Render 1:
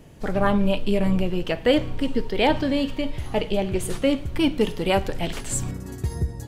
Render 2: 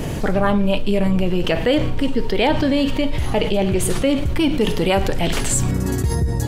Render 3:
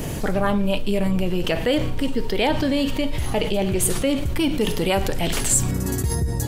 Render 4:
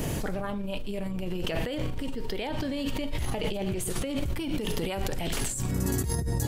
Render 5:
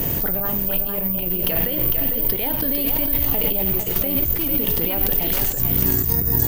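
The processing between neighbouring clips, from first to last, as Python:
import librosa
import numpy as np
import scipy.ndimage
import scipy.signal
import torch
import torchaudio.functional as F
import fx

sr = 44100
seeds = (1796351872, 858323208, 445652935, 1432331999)

y1 = fx.env_flatten(x, sr, amount_pct=70)
y2 = fx.high_shelf(y1, sr, hz=6900.0, db=10.0)
y2 = y2 * librosa.db_to_amplitude(-3.5)
y3 = fx.over_compress(y2, sr, threshold_db=-24.0, ratio=-1.0)
y3 = y3 * librosa.db_to_amplitude(-5.5)
y4 = y3 + 10.0 ** (-6.0 / 20.0) * np.pad(y3, (int(452 * sr / 1000.0), 0))[:len(y3)]
y4 = (np.kron(scipy.signal.resample_poly(y4, 1, 3), np.eye(3)[0]) * 3)[:len(y4)]
y4 = y4 * librosa.db_to_amplitude(3.5)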